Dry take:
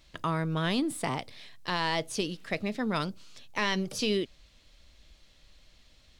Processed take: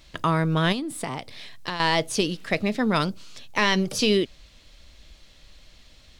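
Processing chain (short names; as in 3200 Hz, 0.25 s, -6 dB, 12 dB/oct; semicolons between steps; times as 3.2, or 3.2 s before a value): 0.72–1.8 compressor 4:1, threshold -36 dBFS, peak gain reduction 10 dB; gain +7.5 dB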